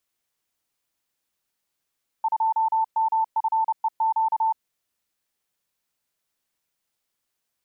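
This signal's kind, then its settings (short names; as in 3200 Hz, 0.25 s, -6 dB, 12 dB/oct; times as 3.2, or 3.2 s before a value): Morse "2MFEQ" 30 wpm 889 Hz -18.5 dBFS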